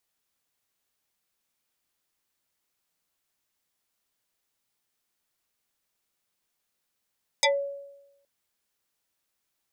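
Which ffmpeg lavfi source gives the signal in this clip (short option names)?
-f lavfi -i "aevalsrc='0.15*pow(10,-3*t/0.96)*sin(2*PI*561*t+5.8*pow(10,-3*t/0.16)*sin(2*PI*2.58*561*t))':d=0.82:s=44100"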